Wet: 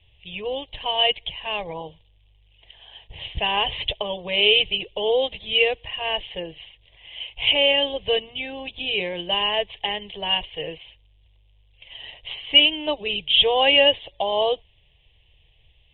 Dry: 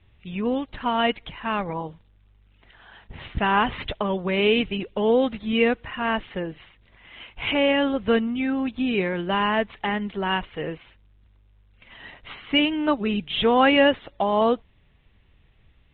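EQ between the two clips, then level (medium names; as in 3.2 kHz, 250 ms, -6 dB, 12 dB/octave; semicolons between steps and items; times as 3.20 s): resonant low-pass 3.1 kHz, resonance Q 5.5; band-stop 380 Hz, Q 12; static phaser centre 570 Hz, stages 4; 0.0 dB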